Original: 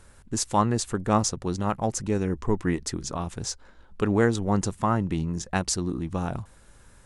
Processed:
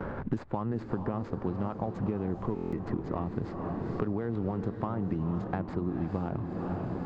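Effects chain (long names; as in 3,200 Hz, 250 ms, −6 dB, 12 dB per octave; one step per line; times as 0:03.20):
running median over 15 samples
noise gate with hold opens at −46 dBFS
low-shelf EQ 71 Hz −10 dB
brickwall limiter −17.5 dBFS, peak gain reduction 7.5 dB
downward compressor, threshold −29 dBFS, peak gain reduction 7.5 dB
head-to-tape spacing loss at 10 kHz 39 dB
feedback delay with all-pass diffusion 470 ms, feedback 56%, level −9 dB
buffer that repeats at 0:02.54, samples 1,024, times 7
multiband upward and downward compressor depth 100%
level +2 dB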